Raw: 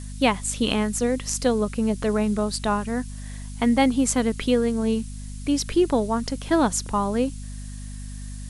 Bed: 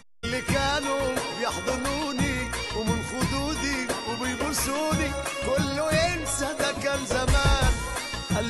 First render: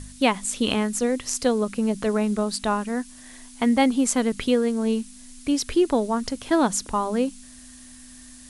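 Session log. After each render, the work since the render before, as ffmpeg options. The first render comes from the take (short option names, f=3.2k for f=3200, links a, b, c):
-af "bandreject=f=50:t=h:w=4,bandreject=f=100:t=h:w=4,bandreject=f=150:t=h:w=4,bandreject=f=200:t=h:w=4"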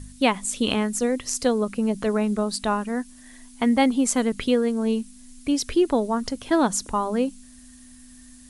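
-af "afftdn=nr=6:nf=-46"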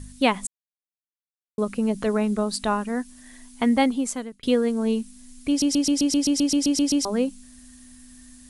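-filter_complex "[0:a]asplit=16[a][b][c][d][e][f][g][h][i][j][k][l][m][n][o][p];[a]atrim=end=0.47,asetpts=PTS-STARTPTS,afade=t=out:st=0.466:d=0.004:c=hsin[q];[b]atrim=start=0.47:end=1.58,asetpts=PTS-STARTPTS,volume=0[r];[c]atrim=start=1.58:end=4.43,asetpts=PTS-STARTPTS,afade=t=in:d=0.004:c=hsin,afade=t=out:st=2.18:d=0.67[s];[d]atrim=start=4.43:end=5.622,asetpts=PTS-STARTPTS,afade=t=in:d=0.004:c=hsin[t];[e]atrim=start=5.488:end=5.622[u];[f]atrim=start=5.488:end=5.622[v];[g]atrim=start=5.488:end=5.622[w];[h]atrim=start=5.488:end=5.622[x];[i]atrim=start=5.488:end=5.622[y];[j]atrim=start=5.488:end=5.622[z];[k]atrim=start=5.488:end=5.622[aa];[l]atrim=start=5.488:end=5.622[ab];[m]atrim=start=5.488:end=5.622[ac];[n]atrim=start=5.488:end=5.622[ad];[o]atrim=start=5.488:end=5.622[ae];[p]atrim=start=7.048[af];[q][r][s][t]concat=n=4:v=0:a=1[ag];[ag][u]acrossfade=d=0.004:c1=hsin:c2=hsin[ah];[ah][v]acrossfade=d=0.004:c1=hsin:c2=hsin[ai];[ai][w]acrossfade=d=0.004:c1=hsin:c2=hsin[aj];[aj][x]acrossfade=d=0.004:c1=hsin:c2=hsin[ak];[ak][y]acrossfade=d=0.004:c1=hsin:c2=hsin[al];[al][z]acrossfade=d=0.004:c1=hsin:c2=hsin[am];[am][aa]acrossfade=d=0.004:c1=hsin:c2=hsin[an];[an][ab]acrossfade=d=0.004:c1=hsin:c2=hsin[ao];[ao][ac]acrossfade=d=0.004:c1=hsin:c2=hsin[ap];[ap][ad]acrossfade=d=0.004:c1=hsin:c2=hsin[aq];[aq][ae]acrossfade=d=0.004:c1=hsin:c2=hsin[ar];[ar][af]acrossfade=d=0.004:c1=hsin:c2=hsin"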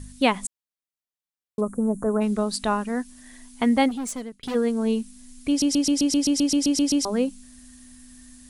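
-filter_complex "[0:a]asplit=3[a][b][c];[a]afade=t=out:st=1.6:d=0.02[d];[b]asuperstop=centerf=3300:order=8:qfactor=0.55,afade=t=in:st=1.6:d=0.02,afade=t=out:st=2.2:d=0.02[e];[c]afade=t=in:st=2.2:d=0.02[f];[d][e][f]amix=inputs=3:normalize=0,asplit=3[g][h][i];[g]afade=t=out:st=3.88:d=0.02[j];[h]volume=27dB,asoftclip=hard,volume=-27dB,afade=t=in:st=3.88:d=0.02,afade=t=out:st=4.54:d=0.02[k];[i]afade=t=in:st=4.54:d=0.02[l];[j][k][l]amix=inputs=3:normalize=0"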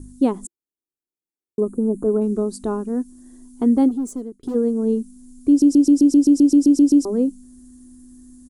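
-af "firequalizer=gain_entry='entry(190,0);entry(340,13);entry(570,-5);entry(1300,-9);entry(2100,-23);entry(6900,-5)':delay=0.05:min_phase=1"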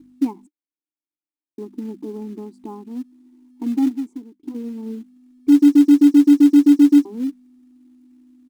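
-filter_complex "[0:a]asplit=3[a][b][c];[a]bandpass=f=300:t=q:w=8,volume=0dB[d];[b]bandpass=f=870:t=q:w=8,volume=-6dB[e];[c]bandpass=f=2.24k:t=q:w=8,volume=-9dB[f];[d][e][f]amix=inputs=3:normalize=0,asplit=2[g][h];[h]acrusher=bits=4:mode=log:mix=0:aa=0.000001,volume=-5dB[i];[g][i]amix=inputs=2:normalize=0"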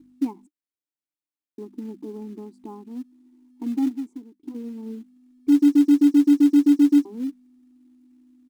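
-af "volume=-4.5dB"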